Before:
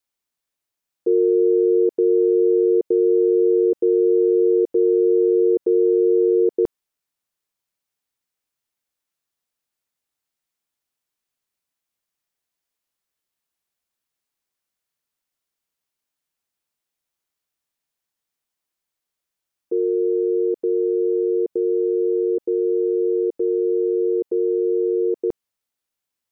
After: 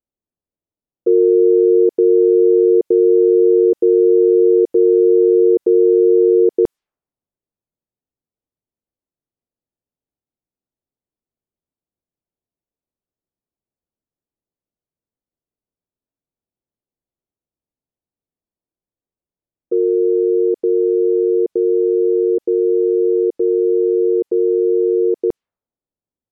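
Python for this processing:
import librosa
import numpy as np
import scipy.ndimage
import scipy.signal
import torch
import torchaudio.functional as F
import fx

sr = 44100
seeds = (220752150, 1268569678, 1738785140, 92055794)

y = fx.env_lowpass(x, sr, base_hz=460.0, full_db=-18.5)
y = y * 10.0 ** (5.0 / 20.0)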